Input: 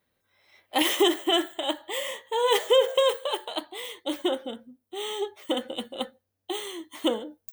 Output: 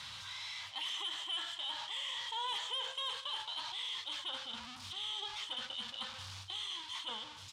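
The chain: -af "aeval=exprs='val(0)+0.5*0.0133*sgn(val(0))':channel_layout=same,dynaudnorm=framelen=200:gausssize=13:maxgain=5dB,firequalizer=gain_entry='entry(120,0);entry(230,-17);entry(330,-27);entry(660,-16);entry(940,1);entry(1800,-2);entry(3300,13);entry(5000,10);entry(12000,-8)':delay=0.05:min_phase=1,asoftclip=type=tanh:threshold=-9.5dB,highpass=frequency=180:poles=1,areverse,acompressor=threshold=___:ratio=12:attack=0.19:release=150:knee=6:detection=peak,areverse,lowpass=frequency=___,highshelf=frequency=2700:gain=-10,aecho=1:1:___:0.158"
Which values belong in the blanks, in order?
-29dB, 11000, 197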